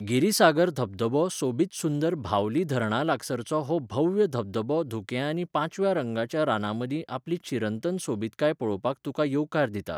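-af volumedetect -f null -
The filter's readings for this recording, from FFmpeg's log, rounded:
mean_volume: -26.6 dB
max_volume: -6.7 dB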